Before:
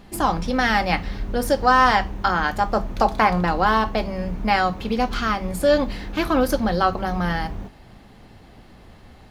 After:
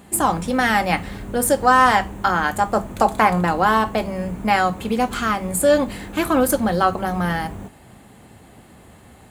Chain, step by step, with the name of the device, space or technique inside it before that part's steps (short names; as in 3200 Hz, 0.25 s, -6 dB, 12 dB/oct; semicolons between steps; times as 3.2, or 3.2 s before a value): budget condenser microphone (HPF 76 Hz 12 dB/oct; resonant high shelf 6500 Hz +7 dB, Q 3); gain +2 dB